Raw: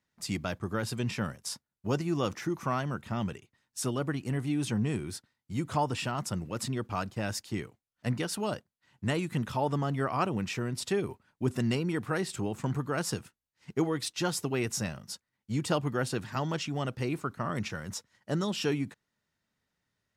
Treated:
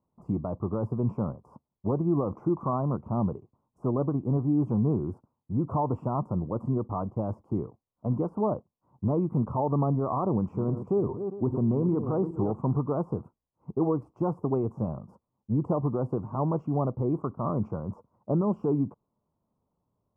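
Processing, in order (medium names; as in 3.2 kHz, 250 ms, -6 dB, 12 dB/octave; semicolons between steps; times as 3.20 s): 10.30–12.52 s: backward echo that repeats 201 ms, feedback 43%, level -10.5 dB; de-esser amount 95%; peak limiter -23.5 dBFS, peak gain reduction 7.5 dB; elliptic low-pass 1.1 kHz, stop band 40 dB; trim +7 dB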